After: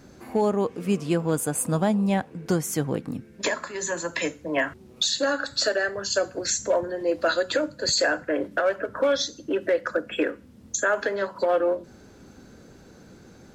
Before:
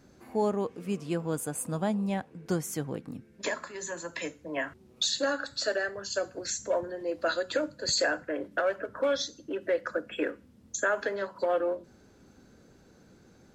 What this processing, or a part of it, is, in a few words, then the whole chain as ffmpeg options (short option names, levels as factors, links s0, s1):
limiter into clipper: -af "alimiter=limit=0.0841:level=0:latency=1:release=400,asoftclip=type=hard:threshold=0.075,volume=2.66"